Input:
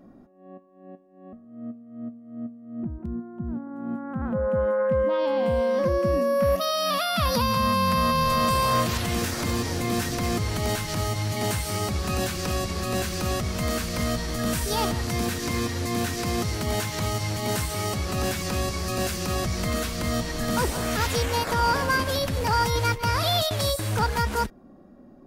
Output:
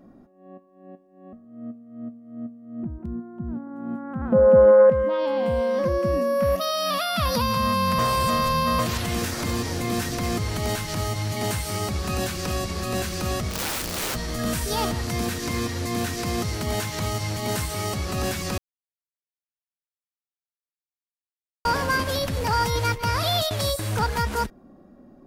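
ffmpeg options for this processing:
-filter_complex "[0:a]asettb=1/sr,asplit=3[a][b][c];[a]atrim=end=4.324[d];[b]atrim=start=4.32:end=4.9,asetpts=PTS-STARTPTS,afade=t=in:d=0.004:c=qsin,afade=t=out:st=0.576:d=0.004:c=qsin,equalizer=f=440:w=0.48:g=11.5[e];[c]atrim=start=4.896[f];[d][e]acrossfade=d=0.004:c1=hsin:c2=qsin[g];[g][f]acrossfade=d=0.004:c1=qsin:c2=hsin,asplit=3[h][i][j];[h]afade=t=out:st=13.5:d=0.02[k];[i]aeval=exprs='(mod(14.1*val(0)+1,2)-1)/14.1':c=same,afade=t=in:st=13.5:d=0.02,afade=t=out:st=14.14:d=0.02[l];[j]afade=t=in:st=14.14:d=0.02[m];[k][l][m]amix=inputs=3:normalize=0,asplit=5[n][o][p][q][r];[n]atrim=end=7.992[s];[o]atrim=start=7.988:end=8.792,asetpts=PTS-STARTPTS,areverse[t];[p]atrim=start=8.788:end=18.58,asetpts=PTS-STARTPTS,afade=t=out:st=9.788:d=0.004:c=hsin[u];[q]atrim=start=18.58:end=21.65,asetpts=PTS-STARTPTS,volume=0[v];[r]atrim=start=21.65,asetpts=PTS-STARTPTS,afade=t=in:d=0.004:c=hsin[w];[s][t]acrossfade=d=0.004:c1=hsin:c2=hsin[x];[u][v][w]concat=n=3:v=0:a=1[y];[x][y]acrossfade=d=0.004:c1=hsin:c2=hsin"

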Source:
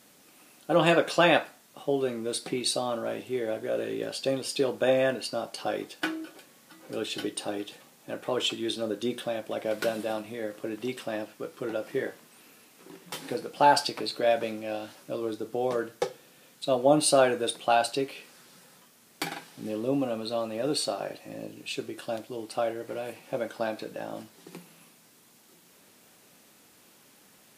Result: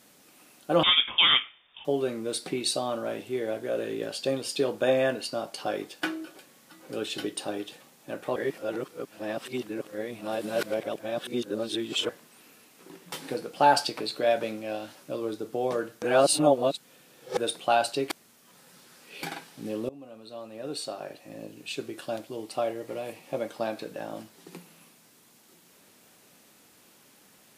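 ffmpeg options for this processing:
-filter_complex "[0:a]asettb=1/sr,asplit=3[a][b][c];[a]atrim=end=0.834[d];[b]atrim=start=0.83:end=1.85,asetpts=PTS-STARTPTS,afade=t=in:d=0.004:c=qsin,afade=t=out:st=1.016:d=0.004:c=qsin,lowpass=f=3.2k:t=q:w=0.5098,lowpass=f=3.2k:t=q:w=0.6013,lowpass=f=3.2k:t=q:w=0.9,lowpass=f=3.2k:t=q:w=2.563,afreqshift=-3800[e];[c]atrim=start=1.846[f];[d][e]acrossfade=d=0.004:c1=hsin:c2=qsin[g];[g][f]acrossfade=d=0.004:c1=qsin:c2=hsin,asettb=1/sr,asplit=3[h][i][j];[h]atrim=end=22.404[k];[i]atrim=start=22.4:end=23.68,asetpts=PTS-STARTPTS,afade=t=in:d=0.004:c=qsin,afade=t=out:st=1.276:d=0.004:c=qsin,bandreject=f=1.5k:w=7.2[l];[j]atrim=start=23.676[m];[k][l]acrossfade=d=0.004:c1=hsin:c2=qsin[n];[n][m]acrossfade=d=0.004:c1=qsin:c2=hsin,asplit=8[o][p][q][r][s][t][u][v];[o]atrim=end=8.362[w];[p]atrim=start=8.358:end=12.092,asetpts=PTS-STARTPTS,areverse[x];[q]atrim=start=12.088:end=16.022[y];[r]atrim=start=16.018:end=17.372,asetpts=PTS-STARTPTS,areverse[z];[s]atrim=start=17.368:end=18.102[aa];[t]atrim=start=18.098:end=19.232,asetpts=PTS-STARTPTS,areverse[ab];[u]atrim=start=19.228:end=19.89,asetpts=PTS-STARTPTS,afade=t=out:st=0.658:d=0.004:c=hsin:silence=0.0707946[ac];[v]atrim=start=19.89,asetpts=PTS-STARTPTS,afade=t=in:d=2.01:silence=0.0707946[ad];[w][x]acrossfade=d=0.004:c1=hsin:c2=hsin[ae];[ae][y]acrossfade=d=0.004:c1=hsin:c2=hsin[af];[af][z]acrossfade=d=0.004:c1=hsin:c2=hsin[ag];[ag][aa]acrossfade=d=0.004:c1=hsin:c2=hsin[ah];[ah][ab]acrossfade=d=0.004:c1=hsin:c2=hsin[ai];[ac][ad]concat=n=2:v=0:a=1[aj];[ai][aj]acrossfade=d=0.004:c1=hsin:c2=hsin"

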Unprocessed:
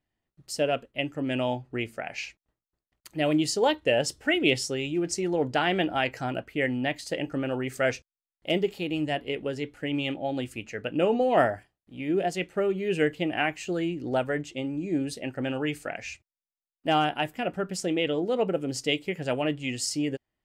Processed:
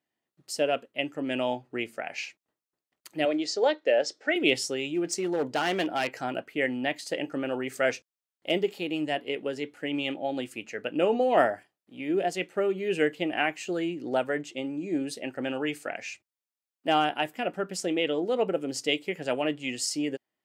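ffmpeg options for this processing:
-filter_complex "[0:a]asettb=1/sr,asplit=3[a][b][c];[a]atrim=end=3.254[d];[b]atrim=start=3.25:end=4.36,asetpts=PTS-STARTPTS,afade=t=in:d=0.004:c=qsin,afade=t=out:st=1.106:d=0.004:c=qsin,highpass=340,equalizer=f=580:t=q:w=4:g=3,equalizer=f=980:t=q:w=4:g=-8,equalizer=f=2.9k:t=q:w=4:g=-8,lowpass=f=6.1k:w=0.5412,lowpass=f=6.1k:w=1.3066[e];[c]atrim=start=4.356[f];[d][e]acrossfade=d=0.004:c1=hsin:c2=qsin[g];[g][f]acrossfade=d=0.004:c1=qsin:c2=hsin,asettb=1/sr,asplit=3[h][i][j];[h]atrim=end=5.114[k];[i]atrim=start=5.11:end=6.18,asetpts=PTS-STARTPTS,afade=t=in:d=0.004:c=qsin,afade=t=out:st=1.066:d=0.004:c=qsin,asoftclip=type=hard:threshold=-22dB[l];[j]atrim=start=6.176[m];[k][l]acrossfade=d=0.004:c1=hsin:c2=qsin[n];[n][m]acrossfade=d=0.004:c1=qsin:c2=hsin,highpass=230"

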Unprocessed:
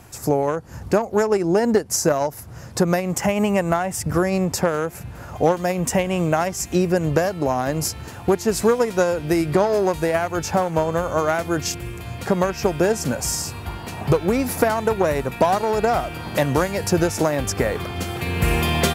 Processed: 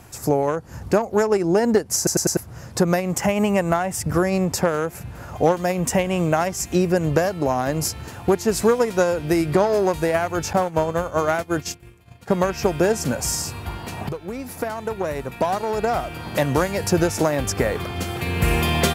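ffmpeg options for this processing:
-filter_complex "[0:a]asettb=1/sr,asplit=3[a][b][c];[a]atrim=end=10.534[d];[b]atrim=start=10.53:end=12.46,asetpts=PTS-STARTPTS,afade=t=in:d=0.004:c=qsin,afade=t=out:st=1.926:d=0.004:c=qsin,agate=range=-33dB:threshold=-21dB:ratio=3:release=100:detection=peak[e];[c]atrim=start=12.456[f];[d][e]acrossfade=d=0.004:c1=hsin:c2=qsin[g];[g][f]acrossfade=d=0.004:c1=qsin:c2=hsin,asplit=6[h][i][j][k][l][m];[h]atrim=end=2.072[n];[i]atrim=start=1.968:end=2.072[o];[j]atrim=start=1.968:end=2.072[p];[k]atrim=start=1.968:end=2.072[q];[l]atrim=start=2.368:end=14.09,asetpts=PTS-STARTPTS,afade=t=out:st=11.718:d=0.004:c=hsin:silence=0.211349[r];[m]atrim=start=14.09,asetpts=PTS-STARTPTS,afade=t=in:d=2.63:silence=0.211349[s];[n][o]acrossfade=d=0.004:c1=hsin:c2=hsin[t];[t][p]acrossfade=d=0.004:c1=hsin:c2=hsin[u];[u][q]acrossfade=d=0.004:c1=hsin:c2=hsin[v];[r][s]concat=n=2:v=0:a=1[w];[v][w]acrossfade=d=0.004:c1=hsin:c2=hsin"

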